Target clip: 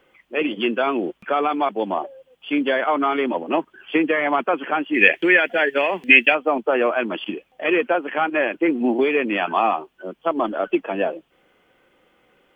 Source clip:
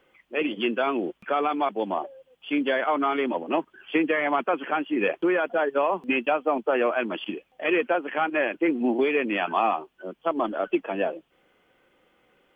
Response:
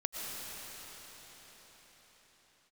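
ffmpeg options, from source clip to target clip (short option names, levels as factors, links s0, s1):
-filter_complex "[0:a]asettb=1/sr,asplit=3[s0][s1][s2];[s0]atrim=end=4.944[s3];[s1]atrim=start=4.94:end=6.35,asetpts=PTS-STARTPTS,afade=t=in:d=0.004:c=qsin,afade=t=out:st=1.406:d=0.004:c=qsin,highshelf=f=1500:t=q:w=3:g=8[s4];[s2]atrim=start=6.346[s5];[s3][s4]acrossfade=d=0.004:c1=hsin:c2=qsin[s6];[s6][s5]acrossfade=d=0.004:c1=qsin:c2=hsin,volume=1.58"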